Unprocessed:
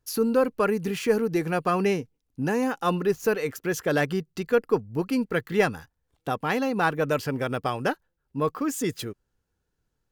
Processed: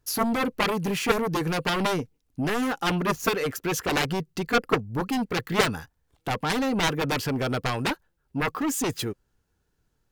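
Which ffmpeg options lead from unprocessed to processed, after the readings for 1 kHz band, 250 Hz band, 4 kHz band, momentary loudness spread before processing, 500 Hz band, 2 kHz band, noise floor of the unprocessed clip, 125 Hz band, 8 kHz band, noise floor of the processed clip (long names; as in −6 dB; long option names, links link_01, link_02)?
+1.0 dB, −0.5 dB, +8.5 dB, 7 LU, −4.0 dB, +2.0 dB, −78 dBFS, +1.5 dB, +5.0 dB, −73 dBFS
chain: -af "bandreject=frequency=510:width=16,aeval=exprs='0.376*(cos(1*acos(clip(val(0)/0.376,-1,1)))-cos(1*PI/2))+0.188*(cos(7*acos(clip(val(0)/0.376,-1,1)))-cos(7*PI/2))':channel_layout=same,volume=-3dB"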